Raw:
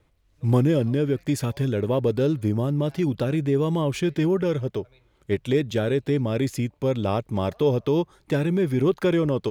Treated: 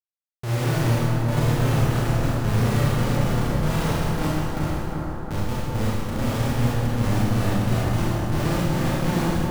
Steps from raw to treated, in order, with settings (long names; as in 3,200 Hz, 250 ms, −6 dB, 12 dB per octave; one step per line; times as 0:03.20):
high-pass filter 43 Hz 6 dB per octave
parametric band 470 Hz −11.5 dB 1.6 octaves
in parallel at −1 dB: downward compressor 4 to 1, threshold −38 dBFS, peak gain reduction 16 dB
on the sum: phaser with its sweep stopped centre 1,100 Hz, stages 4
comparator with hysteresis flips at −25 dBFS
bucket-brigade delay 356 ms, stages 4,096, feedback 75%, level −5 dB
four-comb reverb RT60 1.9 s, combs from 26 ms, DRR −8 dB